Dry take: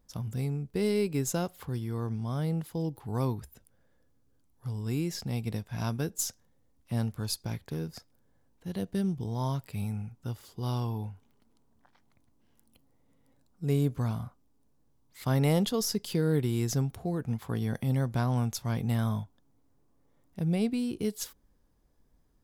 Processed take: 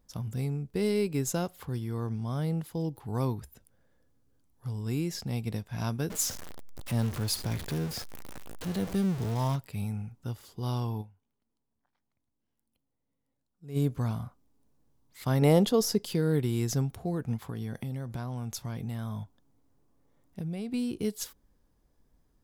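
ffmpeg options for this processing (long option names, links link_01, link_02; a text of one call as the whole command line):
ffmpeg -i in.wav -filter_complex "[0:a]asettb=1/sr,asplit=3[link_01][link_02][link_03];[link_01]atrim=end=6.104[link_04];[link_02]atrim=start=6.1:end=9.56,asetpts=PTS-STARTPTS,afade=type=in:duration=0.004:curve=qsin,afade=type=out:start_time=3.456:duration=0.004:curve=qsin,aeval=exprs='val(0)+0.5*0.0211*sgn(val(0))':channel_layout=same[link_05];[link_03]atrim=start=9.556[link_06];[link_04][link_05]acrossfade=duration=0.004:curve1=hsin:curve2=qsin[link_07];[link_07][link_06]acrossfade=duration=0.004:curve1=qsin:curve2=hsin,asettb=1/sr,asplit=3[link_08][link_09][link_10];[link_08]atrim=end=15.424[link_11];[link_09]atrim=start=15.42:end=16.06,asetpts=PTS-STARTPTS,afade=type=in:duration=0.004:curve=qsin,afade=type=out:start_time=0.636:duration=0.004:curve=qsin,equalizer=frequency=460:width=0.58:gain=6.5[link_12];[link_10]atrim=start=16.056[link_13];[link_11][link_12]acrossfade=duration=0.004:curve1=hsin:curve2=qsin[link_14];[link_14][link_13]acrossfade=duration=0.004:curve1=qsin:curve2=hsin,asettb=1/sr,asplit=3[link_15][link_16][link_17];[link_15]atrim=end=17.444[link_18];[link_16]atrim=start=17.44:end=20.74,asetpts=PTS-STARTPTS,afade=type=in:duration=0.004:curve=qsin,afade=type=out:start_time=3.296:duration=0.004:curve=qsin,acompressor=threshold=-31dB:ratio=10:attack=3.2:release=140:knee=1:detection=peak[link_19];[link_17]atrim=start=20.736[link_20];[link_18][link_19]acrossfade=duration=0.004:curve1=hsin:curve2=qsin[link_21];[link_21][link_20]acrossfade=duration=0.004:curve1=qsin:curve2=hsin,asplit=3[link_22][link_23][link_24];[link_22]atrim=end=11.19,asetpts=PTS-STARTPTS,afade=type=out:start_time=11.01:duration=0.18:curve=exp:silence=0.16788[link_25];[link_23]atrim=start=11.19:end=13.59,asetpts=PTS-STARTPTS,volume=-15.5dB[link_26];[link_24]atrim=start=13.59,asetpts=PTS-STARTPTS,afade=type=in:duration=0.18:curve=exp:silence=0.16788[link_27];[link_25][link_26][link_27]concat=n=3:v=0:a=1" out.wav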